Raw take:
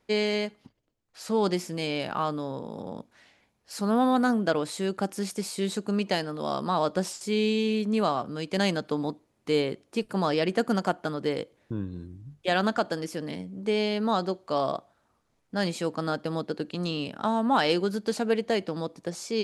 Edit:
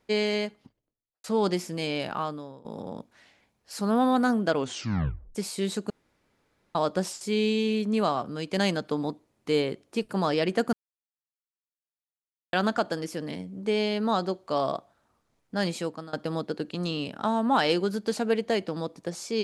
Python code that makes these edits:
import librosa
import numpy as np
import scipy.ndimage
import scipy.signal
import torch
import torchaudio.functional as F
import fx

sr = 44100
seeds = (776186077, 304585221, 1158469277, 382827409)

y = fx.studio_fade_out(x, sr, start_s=0.45, length_s=0.79)
y = fx.edit(y, sr, fx.fade_out_to(start_s=2.06, length_s=0.59, floor_db=-19.0),
    fx.tape_stop(start_s=4.55, length_s=0.8),
    fx.room_tone_fill(start_s=5.9, length_s=0.85),
    fx.silence(start_s=10.73, length_s=1.8),
    fx.fade_out_to(start_s=15.77, length_s=0.36, floor_db=-22.5), tone=tone)